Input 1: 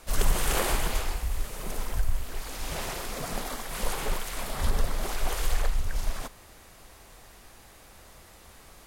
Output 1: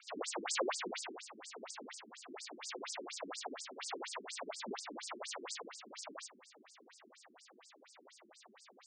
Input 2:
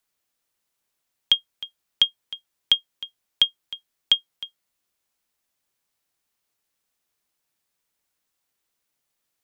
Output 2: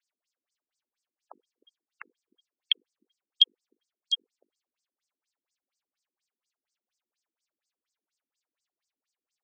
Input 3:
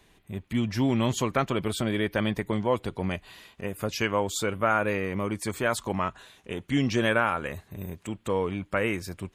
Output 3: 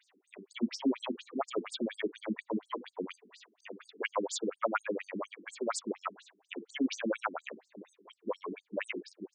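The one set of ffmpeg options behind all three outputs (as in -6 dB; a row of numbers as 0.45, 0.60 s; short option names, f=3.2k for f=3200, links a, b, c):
-af "bandreject=f=48.87:t=h:w=4,bandreject=f=97.74:t=h:w=4,bandreject=f=146.61:t=h:w=4,bandreject=f=195.48:t=h:w=4,bandreject=f=244.35:t=h:w=4,bandreject=f=293.22:t=h:w=4,bandreject=f=342.09:t=h:w=4,bandreject=f=390.96:t=h:w=4,bandreject=f=439.83:t=h:w=4,bandreject=f=488.7:t=h:w=4,afftfilt=real='re*between(b*sr/1024,260*pow(6600/260,0.5+0.5*sin(2*PI*4.2*pts/sr))/1.41,260*pow(6600/260,0.5+0.5*sin(2*PI*4.2*pts/sr))*1.41)':imag='im*between(b*sr/1024,260*pow(6600/260,0.5+0.5*sin(2*PI*4.2*pts/sr))/1.41,260*pow(6600/260,0.5+0.5*sin(2*PI*4.2*pts/sr))*1.41)':win_size=1024:overlap=0.75"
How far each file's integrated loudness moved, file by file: -11.5, -4.5, -9.0 LU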